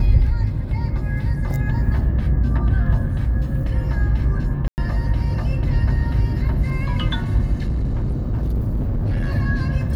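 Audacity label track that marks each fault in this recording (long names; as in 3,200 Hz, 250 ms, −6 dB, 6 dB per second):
4.680000	4.780000	drop-out 99 ms
7.530000	9.310000	clipping −17.5 dBFS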